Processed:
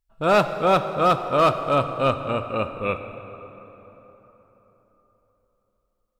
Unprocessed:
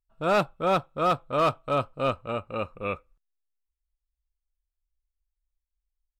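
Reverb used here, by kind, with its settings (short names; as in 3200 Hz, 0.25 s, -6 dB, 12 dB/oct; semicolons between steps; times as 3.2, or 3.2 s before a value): plate-style reverb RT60 4.2 s, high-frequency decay 0.55×, DRR 8.5 dB; gain +5 dB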